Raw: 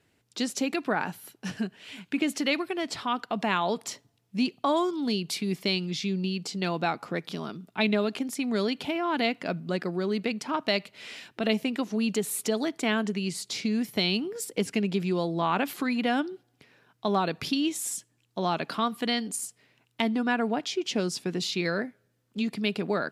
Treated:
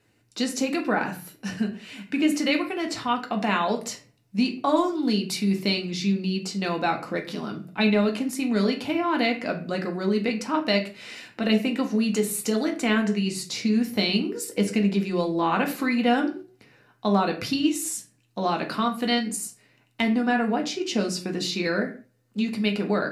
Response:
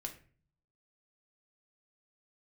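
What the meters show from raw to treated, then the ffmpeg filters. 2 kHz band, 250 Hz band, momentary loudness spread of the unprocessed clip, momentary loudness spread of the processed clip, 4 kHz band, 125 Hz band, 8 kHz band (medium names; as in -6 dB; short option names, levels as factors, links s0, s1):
+3.0 dB, +5.0 dB, 9 LU, 8 LU, +2.0 dB, +3.5 dB, +2.5 dB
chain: -filter_complex "[0:a]bandreject=f=3300:w=8.7[s0];[1:a]atrim=start_sample=2205,afade=t=out:st=0.27:d=0.01,atrim=end_sample=12348,asetrate=42777,aresample=44100[s1];[s0][s1]afir=irnorm=-1:irlink=0,volume=1.78"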